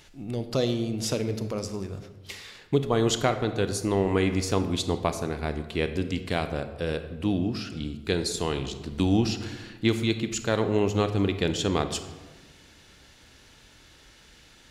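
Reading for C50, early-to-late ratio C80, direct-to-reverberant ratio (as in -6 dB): 10.5 dB, 12.0 dB, 9.0 dB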